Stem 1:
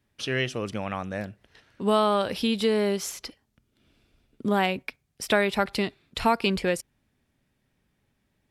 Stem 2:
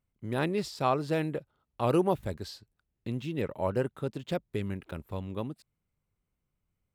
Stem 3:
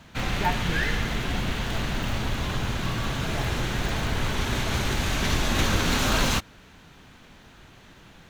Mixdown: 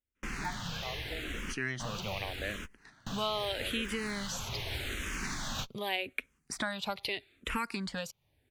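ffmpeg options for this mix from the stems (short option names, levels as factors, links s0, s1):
-filter_complex "[0:a]bandreject=f=5300:w=10,adelay=1300,volume=1.33[s0];[1:a]dynaudnorm=f=260:g=13:m=1.58,volume=0.316,asplit=2[s1][s2];[2:a]volume=0.562[s3];[s2]apad=whole_len=365951[s4];[s3][s4]sidechaingate=range=0.00562:threshold=0.00126:ratio=16:detection=peak[s5];[s0][s1][s5]amix=inputs=3:normalize=0,acrossover=split=1400|2900[s6][s7][s8];[s6]acompressor=threshold=0.0178:ratio=4[s9];[s7]acompressor=threshold=0.0224:ratio=4[s10];[s8]acompressor=threshold=0.0141:ratio=4[s11];[s9][s10][s11]amix=inputs=3:normalize=0,asplit=2[s12][s13];[s13]afreqshift=-0.82[s14];[s12][s14]amix=inputs=2:normalize=1"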